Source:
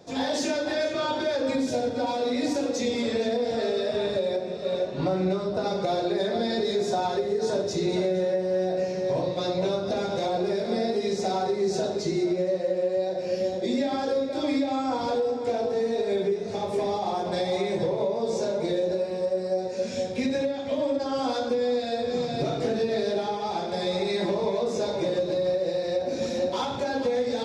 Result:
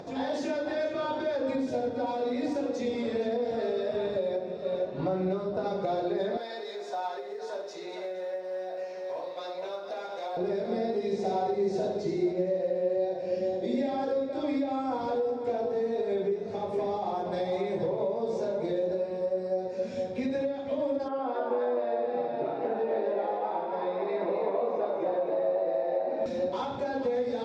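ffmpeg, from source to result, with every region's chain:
-filter_complex "[0:a]asettb=1/sr,asplit=3[a][b][c];[a]atrim=end=6.374[d];[b]atrim=start=6.37:end=10.37,asetpts=PTS-STARTPTS,afade=t=in:d=0.004:c=qsin,afade=t=out:st=3.996:d=0.004:c=qsin,highpass=710,acrusher=bits=7:mode=log:mix=0:aa=0.000001[e];[c]atrim=start=10.366[f];[d][e]acrossfade=d=0.004:c1=hsin:c2=qsin[g];[g][f]acrossfade=d=0.004:c1=qsin:c2=hsin,asettb=1/sr,asplit=3[h][i][j];[h]atrim=end=11.054[k];[i]atrim=start=11.05:end=14.04,asetpts=PTS-STARTPTS,afade=t=in:d=0.004:c=qsin,afade=t=out:st=2.986:d=0.004:c=qsin,equalizer=f=1.3k:w=2.9:g=-6,aecho=1:1:78:0.531,atrim=end_sample=131859[l];[j]atrim=start=14.036[m];[k][l]acrossfade=d=0.004:c1=hsin:c2=qsin[n];[n][m]acrossfade=d=0.004:c1=qsin:c2=hsin,asettb=1/sr,asplit=3[o][p][q];[o]atrim=end=21.084[r];[p]atrim=start=21.08:end=26.26,asetpts=PTS-STARTPTS,afade=t=in:d=0.004:c=qsin,afade=t=out:st=5.176:d=0.004:c=qsin,highpass=290,lowpass=2.1k,asplit=5[s][t][u][v][w];[t]adelay=257,afreqshift=110,volume=-4dB[x];[u]adelay=514,afreqshift=220,volume=-13.9dB[y];[v]adelay=771,afreqshift=330,volume=-23.8dB[z];[w]adelay=1028,afreqshift=440,volume=-33.7dB[aa];[s][x][y][z][aa]amix=inputs=5:normalize=0,atrim=end_sample=228438[ab];[q]atrim=start=26.256[ac];[r][ab]acrossfade=d=0.004:c1=hsin:c2=qsin[ad];[ad][ac]acrossfade=d=0.004:c1=qsin:c2=hsin,lowshelf=f=280:g=-4.5,acompressor=mode=upward:threshold=-32dB:ratio=2.5,lowpass=f=1.3k:p=1,volume=-1.5dB"

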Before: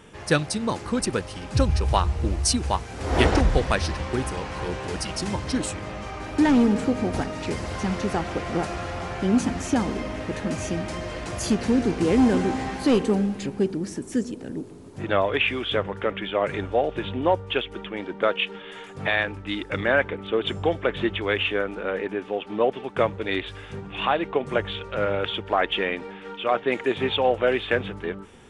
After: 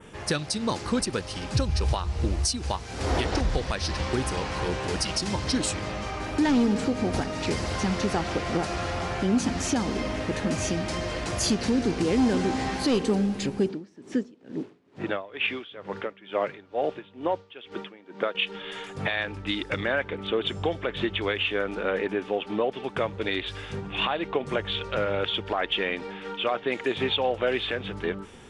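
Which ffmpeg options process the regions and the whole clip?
-filter_complex "[0:a]asettb=1/sr,asplit=3[a][b][c];[a]atrim=end=13.694[d];[b]atrim=start=13.69:end=18.35,asetpts=PTS-STARTPTS,afade=t=in:d=0.004:c=qsin,afade=t=out:st=4.656:d=0.004:c=qsin,acrusher=bits=7:mix=0:aa=0.5,highpass=160,lowpass=4k,aeval=exprs='val(0)*pow(10,-22*(0.5-0.5*cos(2*PI*2.2*n/s))/20)':c=same[e];[c]atrim=start=18.346[f];[d][e]acrossfade=d=0.004:c1=hsin:c2=qsin[g];[g][f]acrossfade=d=0.004:c1=qsin:c2=hsin,adynamicequalizer=threshold=0.00631:dfrequency=4700:dqfactor=1.1:tfrequency=4700:tqfactor=1.1:attack=5:release=100:ratio=0.375:range=3.5:mode=boostabove:tftype=bell,acompressor=threshold=-25dB:ratio=1.5,alimiter=limit=-16.5dB:level=0:latency=1:release=284,volume=1.5dB"

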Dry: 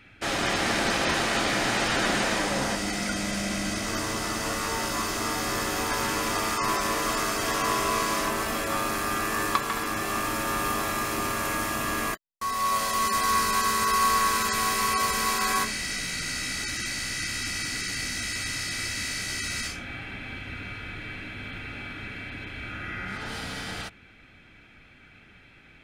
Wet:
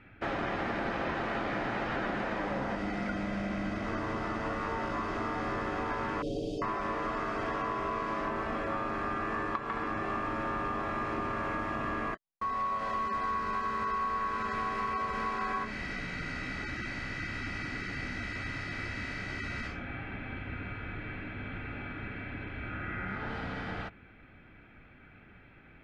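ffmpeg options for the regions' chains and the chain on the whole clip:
-filter_complex "[0:a]asettb=1/sr,asplit=3[a][b][c];[a]atrim=end=6.224[d];[b]atrim=start=6.22:end=6.62,asetpts=PTS-STARTPTS,afade=t=in:d=0.004:c=qsin,afade=t=out:st=0.396:d=0.004:c=qsin,asuperstop=centerf=1400:order=12:qfactor=0.56,aecho=1:1:6.9:0.8,atrim=end_sample=17640[e];[c]atrim=start=6.616[f];[d][e]acrossfade=d=0.004:c1=hsin:c2=qsin[g];[g][f]acrossfade=d=0.004:c1=qsin:c2=hsin,lowpass=1.7k,acompressor=threshold=-30dB:ratio=6"

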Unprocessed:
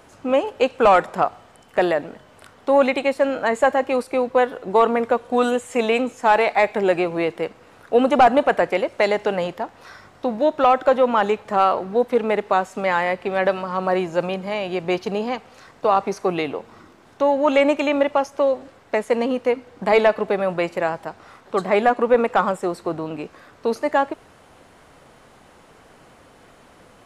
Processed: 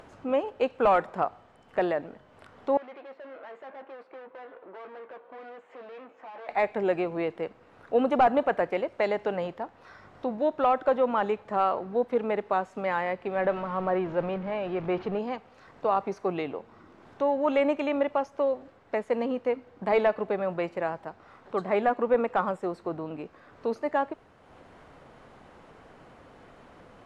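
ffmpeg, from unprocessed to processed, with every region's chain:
-filter_complex "[0:a]asettb=1/sr,asplit=3[a][b][c];[a]atrim=end=2.774[d];[b]atrim=start=2.77:end=6.49,asetpts=PTS-STARTPTS,afade=t=in:d=0.004:c=qsin,afade=t=out:st=3.716:d=0.004:c=qsin,aeval=exprs='(tanh(44.7*val(0)+0.6)-tanh(0.6))/44.7':c=same,highpass=400,lowpass=2.2k,asplit=2[e][f];[f]adelay=15,volume=-11dB[g];[e][g]amix=inputs=2:normalize=0,atrim=end_sample=164052[h];[c]atrim=start=6.486[i];[d][h]acrossfade=d=0.004:c1=hsin:c2=qsin[j];[j][i]acrossfade=d=0.004:c1=qsin:c2=hsin,asettb=1/sr,asplit=3[k][l][m];[k]atrim=end=13.354[n];[l]atrim=start=13.35:end=15.19,asetpts=PTS-STARTPTS,afade=t=in:d=0.004:c=qsin,afade=t=out:st=1.836:d=0.004:c=qsin,aeval=exprs='val(0)+0.5*0.0376*sgn(val(0))':c=same,lowpass=2.7k[o];[m]atrim=start=15.186[p];[n][o]acrossfade=d=0.004:c1=hsin:c2=qsin[q];[q][p]acrossfade=d=0.004:c1=qsin:c2=hsin,aemphasis=mode=reproduction:type=75fm,acompressor=mode=upward:threshold=-36dB:ratio=2.5,volume=-8dB"

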